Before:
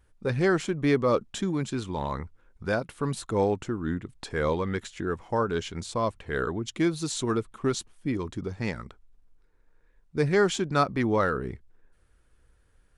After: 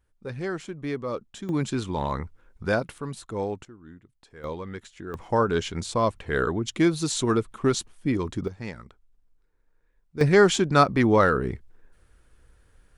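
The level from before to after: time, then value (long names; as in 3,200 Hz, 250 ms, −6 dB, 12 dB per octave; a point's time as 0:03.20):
−7.5 dB
from 0:01.49 +3 dB
from 0:02.98 −5 dB
from 0:03.65 −17 dB
from 0:04.44 −7 dB
from 0:05.14 +4 dB
from 0:08.48 −5 dB
from 0:10.21 +5.5 dB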